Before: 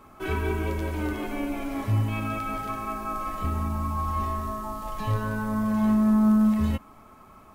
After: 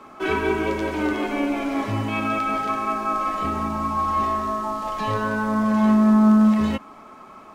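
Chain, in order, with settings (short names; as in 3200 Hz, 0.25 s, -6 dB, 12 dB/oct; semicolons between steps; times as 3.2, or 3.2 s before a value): three-band isolator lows -16 dB, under 190 Hz, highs -15 dB, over 7500 Hz; gain +8 dB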